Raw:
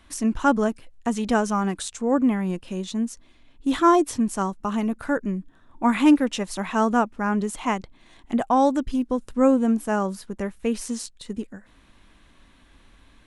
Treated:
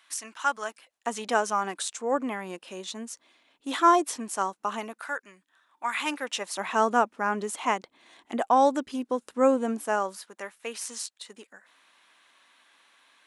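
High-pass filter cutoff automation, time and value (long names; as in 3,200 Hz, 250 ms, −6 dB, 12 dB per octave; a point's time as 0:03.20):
0:00.60 1,200 Hz
0:01.11 520 Hz
0:04.78 520 Hz
0:05.19 1,300 Hz
0:05.91 1,300 Hz
0:06.71 390 Hz
0:09.79 390 Hz
0:10.30 810 Hz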